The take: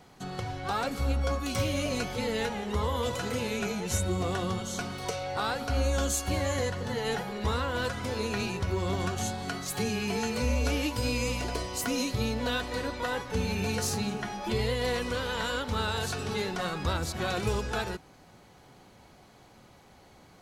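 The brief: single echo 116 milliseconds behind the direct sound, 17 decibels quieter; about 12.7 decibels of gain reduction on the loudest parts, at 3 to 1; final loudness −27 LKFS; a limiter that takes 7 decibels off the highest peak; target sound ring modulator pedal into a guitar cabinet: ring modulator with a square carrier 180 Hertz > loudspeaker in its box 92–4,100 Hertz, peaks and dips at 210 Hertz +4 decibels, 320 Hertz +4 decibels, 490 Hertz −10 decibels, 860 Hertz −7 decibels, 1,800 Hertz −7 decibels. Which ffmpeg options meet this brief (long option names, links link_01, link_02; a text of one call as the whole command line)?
ffmpeg -i in.wav -af "acompressor=threshold=-42dB:ratio=3,alimiter=level_in=9dB:limit=-24dB:level=0:latency=1,volume=-9dB,aecho=1:1:116:0.141,aeval=exprs='val(0)*sgn(sin(2*PI*180*n/s))':channel_layout=same,highpass=92,equalizer=frequency=210:width_type=q:width=4:gain=4,equalizer=frequency=320:width_type=q:width=4:gain=4,equalizer=frequency=490:width_type=q:width=4:gain=-10,equalizer=frequency=860:width_type=q:width=4:gain=-7,equalizer=frequency=1800:width_type=q:width=4:gain=-7,lowpass=frequency=4100:width=0.5412,lowpass=frequency=4100:width=1.3066,volume=17dB" out.wav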